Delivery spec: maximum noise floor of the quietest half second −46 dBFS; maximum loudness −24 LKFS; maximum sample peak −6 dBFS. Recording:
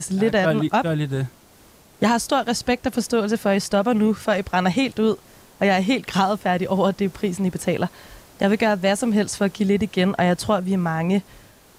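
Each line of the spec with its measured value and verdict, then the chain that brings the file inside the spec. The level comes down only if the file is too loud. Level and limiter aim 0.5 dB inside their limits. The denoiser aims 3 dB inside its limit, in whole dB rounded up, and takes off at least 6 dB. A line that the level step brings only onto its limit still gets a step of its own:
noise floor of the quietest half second −51 dBFS: in spec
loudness −21.5 LKFS: out of spec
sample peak −5.5 dBFS: out of spec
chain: level −3 dB

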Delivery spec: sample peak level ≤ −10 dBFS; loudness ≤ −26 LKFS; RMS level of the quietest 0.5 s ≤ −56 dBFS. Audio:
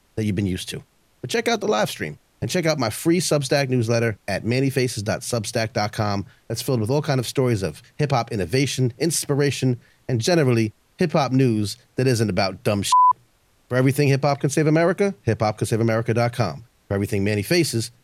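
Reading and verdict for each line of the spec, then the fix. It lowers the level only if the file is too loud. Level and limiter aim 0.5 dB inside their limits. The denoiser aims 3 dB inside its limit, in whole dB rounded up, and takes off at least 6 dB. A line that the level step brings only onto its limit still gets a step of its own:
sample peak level −6.0 dBFS: out of spec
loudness −21.5 LKFS: out of spec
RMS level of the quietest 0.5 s −60 dBFS: in spec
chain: level −5 dB

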